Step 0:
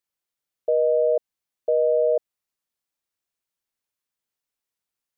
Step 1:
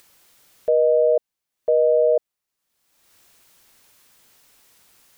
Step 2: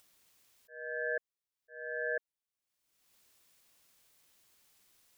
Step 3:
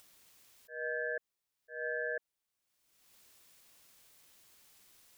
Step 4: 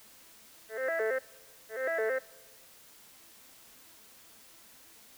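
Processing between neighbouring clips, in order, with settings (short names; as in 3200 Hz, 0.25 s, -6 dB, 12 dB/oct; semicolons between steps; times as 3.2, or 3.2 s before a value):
upward compressor, threshold -37 dBFS; gain +3 dB
bell 180 Hz -11.5 dB 2.6 oct; auto swell 0.499 s; ring modulator 1100 Hz; gain -8.5 dB
limiter -32.5 dBFS, peak gain reduction 8.5 dB; gain +5 dB
arpeggiated vocoder minor triad, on A3, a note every 0.11 s; added noise white -63 dBFS; on a send at -22 dB: reverb RT60 1.6 s, pre-delay 3 ms; on the sum: gain +6.5 dB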